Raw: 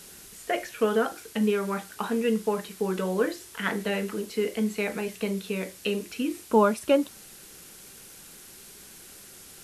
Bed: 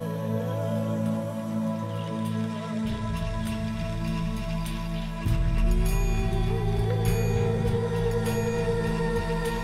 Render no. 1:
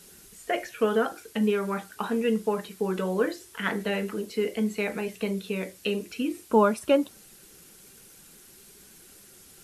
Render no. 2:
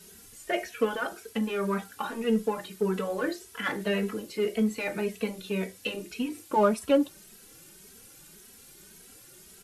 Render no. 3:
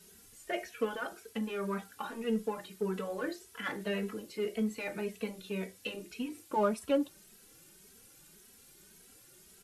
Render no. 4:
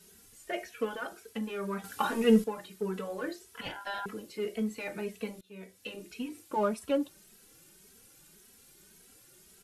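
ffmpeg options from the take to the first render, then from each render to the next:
ffmpeg -i in.wav -af "afftdn=noise_reduction=6:noise_floor=-48" out.wav
ffmpeg -i in.wav -filter_complex "[0:a]asplit=2[link_01][link_02];[link_02]asoftclip=type=hard:threshold=-27dB,volume=-8dB[link_03];[link_01][link_03]amix=inputs=2:normalize=0,asplit=2[link_04][link_05];[link_05]adelay=2.8,afreqshift=1.8[link_06];[link_04][link_06]amix=inputs=2:normalize=1" out.wav
ffmpeg -i in.wav -af "volume=-6.5dB" out.wav
ffmpeg -i in.wav -filter_complex "[0:a]asettb=1/sr,asplit=3[link_01][link_02][link_03];[link_01]atrim=end=3.614[link_04];[link_02]atrim=start=3.61:end=4.06,asetpts=PTS-STARTPTS,afade=type=in:duration=0.004:curve=qsin,afade=type=out:start_time=0.446:duration=0.004:curve=qsin,aeval=exprs='val(0)*sin(2*PI*1200*n/s)':channel_layout=same[link_05];[link_03]atrim=start=4.056[link_06];[link_04][link_05]acrossfade=duration=0.004:curve1=hsin:curve2=qsin[link_07];[link_07][link_06]acrossfade=duration=0.004:curve1=qsin:curve2=hsin,asplit=4[link_08][link_09][link_10][link_11];[link_08]atrim=end=1.842[link_12];[link_09]atrim=start=1.838:end=2.442,asetpts=PTS-STARTPTS,volume=10dB[link_13];[link_10]atrim=start=2.438:end=5.41,asetpts=PTS-STARTPTS,afade=type=out:start_time=2.968:duration=0.004:curve=hsin:silence=0.0668344[link_14];[link_11]atrim=start=5.41,asetpts=PTS-STARTPTS,afade=type=in:duration=0.65:silence=0.0668344[link_15];[link_12][link_13]acrossfade=duration=0.004:curve1=hsin:curve2=hsin[link_16];[link_14][link_15]concat=n=2:v=0:a=1[link_17];[link_16][link_17]acrossfade=duration=0.004:curve1=hsin:curve2=hsin" out.wav

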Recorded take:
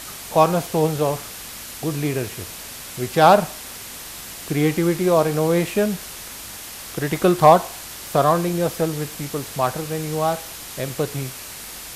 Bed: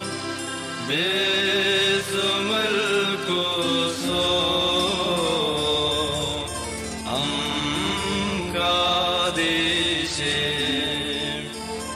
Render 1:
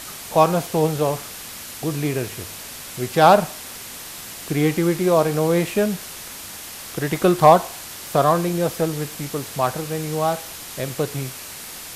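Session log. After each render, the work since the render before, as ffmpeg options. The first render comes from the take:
ffmpeg -i in.wav -af "bandreject=frequency=50:width_type=h:width=4,bandreject=frequency=100:width_type=h:width=4" out.wav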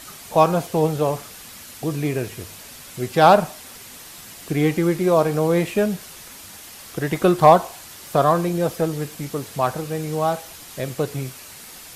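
ffmpeg -i in.wav -af "afftdn=noise_reduction=6:noise_floor=-36" out.wav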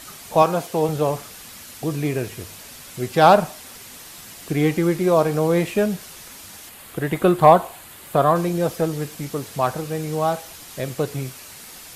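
ffmpeg -i in.wav -filter_complex "[0:a]asettb=1/sr,asplit=3[link_01][link_02][link_03];[link_01]atrim=end=0.424[link_04];[link_02]atrim=start=0.42:end=0.89,asetpts=PTS-STARTPTS,afade=type=in:duration=0.004:curve=qsin,afade=type=out:start_time=0.466:duration=0.004:curve=qsin,highpass=frequency=230:poles=1[link_05];[link_03]atrim=start=0.886[link_06];[link_04][link_05]acrossfade=duration=0.004:curve1=hsin:curve2=qsin[link_07];[link_07][link_06]acrossfade=duration=0.004:curve1=qsin:curve2=hsin,asettb=1/sr,asplit=3[link_08][link_09][link_10];[link_08]atrim=end=6.694[link_11];[link_09]atrim=start=6.69:end=8.36,asetpts=PTS-STARTPTS,afade=type=in:duration=0.004:curve=qsin,afade=type=out:start_time=1.666:duration=0.004:curve=qsin,equalizer=frequency=5600:width_type=o:width=0.62:gain=-11[link_12];[link_10]atrim=start=8.356[link_13];[link_11][link_12]acrossfade=duration=0.004:curve1=hsin:curve2=qsin[link_14];[link_14][link_13]acrossfade=duration=0.004:curve1=qsin:curve2=hsin" out.wav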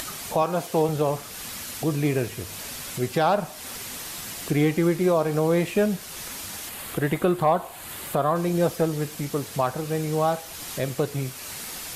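ffmpeg -i in.wav -af "alimiter=limit=-11.5dB:level=0:latency=1:release=273,acompressor=mode=upward:threshold=-28dB:ratio=2.5" out.wav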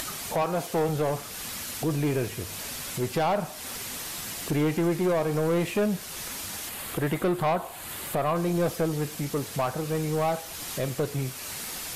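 ffmpeg -i in.wav -af "asoftclip=type=tanh:threshold=-19.5dB" out.wav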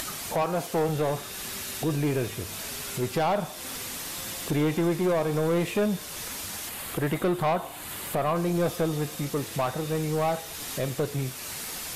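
ffmpeg -i in.wav -i bed.wav -filter_complex "[1:a]volume=-26dB[link_01];[0:a][link_01]amix=inputs=2:normalize=0" out.wav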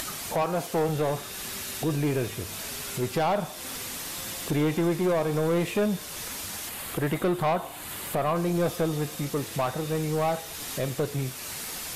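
ffmpeg -i in.wav -af anull out.wav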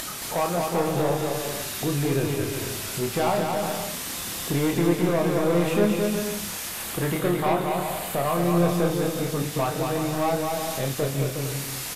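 ffmpeg -i in.wav -filter_complex "[0:a]asplit=2[link_01][link_02];[link_02]adelay=29,volume=-5dB[link_03];[link_01][link_03]amix=inputs=2:normalize=0,asplit=2[link_04][link_05];[link_05]aecho=0:1:220|363|456|516.4|555.6:0.631|0.398|0.251|0.158|0.1[link_06];[link_04][link_06]amix=inputs=2:normalize=0" out.wav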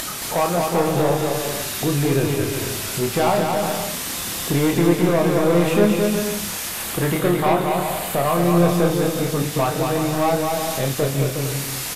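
ffmpeg -i in.wav -af "volume=5dB" out.wav

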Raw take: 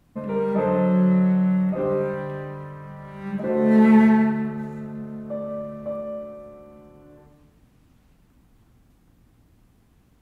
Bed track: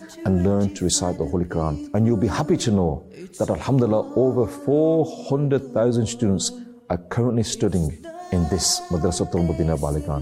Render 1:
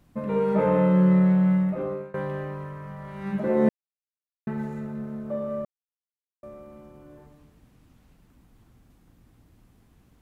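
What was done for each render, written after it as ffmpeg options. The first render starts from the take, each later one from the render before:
ffmpeg -i in.wav -filter_complex "[0:a]asplit=6[link_01][link_02][link_03][link_04][link_05][link_06];[link_01]atrim=end=2.14,asetpts=PTS-STARTPTS,afade=type=out:start_time=1.52:duration=0.62:silence=0.0668344[link_07];[link_02]atrim=start=2.14:end=3.69,asetpts=PTS-STARTPTS,afade=type=in:duration=0.004:curve=hsin:silence=0.0668344,afade=type=out:start_time=1.546:duration=0.004:curve=hsin[link_08];[link_03]atrim=start=3.69:end=4.47,asetpts=PTS-STARTPTS,volume=0[link_09];[link_04]atrim=start=4.47:end=5.65,asetpts=PTS-STARTPTS,afade=type=in:duration=0.004:curve=hsin,afade=type=out:start_time=1.176:duration=0.004:curve=hsin[link_10];[link_05]atrim=start=5.65:end=6.43,asetpts=PTS-STARTPTS,volume=0[link_11];[link_06]atrim=start=6.43,asetpts=PTS-STARTPTS,afade=type=in:duration=0.004:curve=hsin[link_12];[link_07][link_08][link_09][link_10][link_11][link_12]concat=n=6:v=0:a=1" out.wav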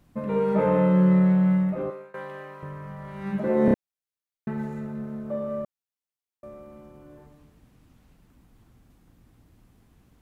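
ffmpeg -i in.wav -filter_complex "[0:a]asettb=1/sr,asplit=3[link_01][link_02][link_03];[link_01]atrim=end=1.904[link_04];[link_02]atrim=start=1.9:end=2.63,asetpts=PTS-STARTPTS,afade=type=in:duration=0.004:curve=qsin,afade=type=out:start_time=0.726:duration=0.004:curve=qsin,highpass=frequency=910:poles=1[link_05];[link_03]atrim=start=2.626[link_06];[link_04][link_05]acrossfade=duration=0.004:curve1=hsin:curve2=qsin[link_07];[link_07][link_06]acrossfade=duration=0.004:curve1=qsin:curve2=hsin,asplit=4[link_08][link_09][link_10][link_11];[link_08]atrim=end=3.682[link_12];[link_09]atrim=start=3.648:end=3.682[link_13];[link_10]atrim=start=3.648:end=3.682[link_14];[link_11]atrim=start=3.738[link_15];[link_12][link_13]acrossfade=duration=0.004:curve1=hsin:curve2=hsin[link_16];[link_16][link_14]acrossfade=duration=0.004:curve1=hsin:curve2=hsin[link_17];[link_17][link_15]acrossfade=duration=0.004:curve1=hsin:curve2=hsin" out.wav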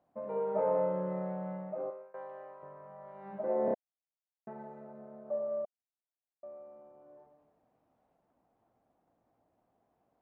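ffmpeg -i in.wav -af "bandpass=frequency=680:width_type=q:width=3.4:csg=0" out.wav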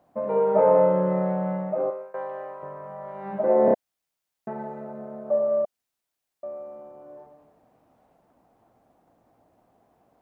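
ffmpeg -i in.wav -af "volume=12dB" out.wav

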